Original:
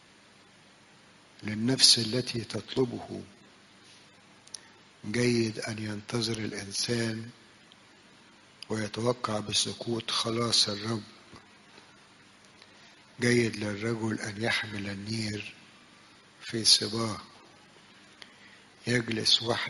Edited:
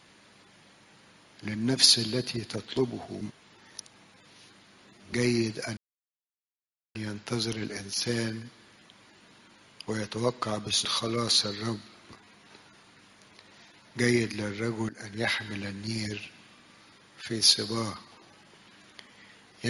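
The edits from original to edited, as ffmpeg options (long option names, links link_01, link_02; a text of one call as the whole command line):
ffmpeg -i in.wav -filter_complex "[0:a]asplit=6[link_01][link_02][link_03][link_04][link_05][link_06];[link_01]atrim=end=3.212[link_07];[link_02]atrim=start=3.208:end=5.132,asetpts=PTS-STARTPTS,areverse[link_08];[link_03]atrim=start=5.128:end=5.77,asetpts=PTS-STARTPTS,afade=type=out:start_time=0.638:duration=0.004:curve=hsin,apad=pad_dur=1.18[link_09];[link_04]atrim=start=5.77:end=9.672,asetpts=PTS-STARTPTS,afade=type=in:duration=0.004:curve=hsin[link_10];[link_05]atrim=start=10.078:end=14.12,asetpts=PTS-STARTPTS,afade=type=out:start_time=4.038:duration=0.004:curve=hsin:silence=0.133352[link_11];[link_06]atrim=start=14.12,asetpts=PTS-STARTPTS,afade=type=in:duration=0.34:silence=0.133352[link_12];[link_07][link_08]acrossfade=duration=0.004:curve1=hsin:curve2=hsin[link_13];[link_09][link_10]concat=n=2:v=0:a=1[link_14];[link_13][link_14]acrossfade=duration=0.004:curve1=hsin:curve2=hsin[link_15];[link_11][link_12]concat=n=2:v=0:a=1[link_16];[link_15][link_16]acrossfade=duration=0.004:curve1=hsin:curve2=hsin" out.wav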